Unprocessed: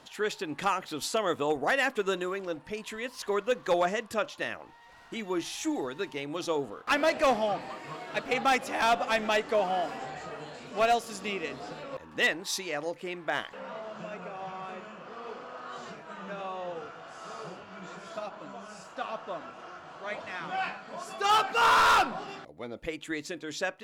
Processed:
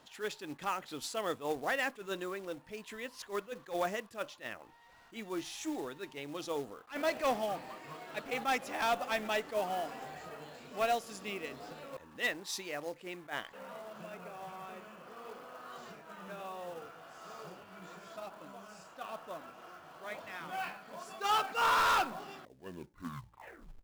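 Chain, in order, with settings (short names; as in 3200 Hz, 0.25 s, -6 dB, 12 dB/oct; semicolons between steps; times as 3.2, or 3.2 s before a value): tape stop at the end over 1.48 s; short-mantissa float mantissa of 2-bit; attack slew limiter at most 260 dB/s; gain -6.5 dB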